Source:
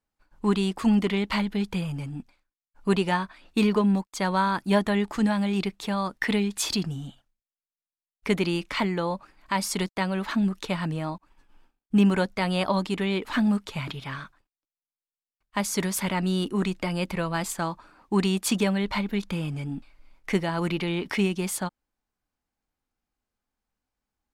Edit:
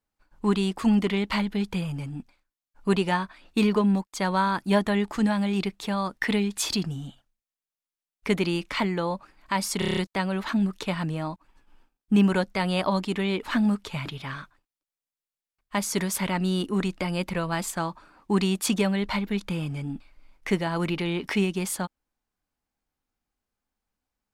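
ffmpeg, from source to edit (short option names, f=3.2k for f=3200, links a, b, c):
-filter_complex "[0:a]asplit=7[a][b][c][d][e][f][g];[a]atrim=end=9.822[h];[b]atrim=start=9.788:end=9.822[i];[c]atrim=start=9.788:end=9.822[j];[d]atrim=start=9.788:end=9.822[k];[e]atrim=start=9.788:end=9.822[l];[f]atrim=start=9.788:end=9.822[m];[g]atrim=start=9.788[n];[h][i]acrossfade=d=0.004:c1=hsin:c2=hsin[o];[o][j]acrossfade=d=0.004:c1=hsin:c2=hsin[p];[p][k]acrossfade=d=0.004:c1=hsin:c2=hsin[q];[q][l]acrossfade=d=0.004:c1=hsin:c2=hsin[r];[r][m]acrossfade=d=0.004:c1=hsin:c2=hsin[s];[s][n]acrossfade=d=0.004:c1=hsin:c2=hsin"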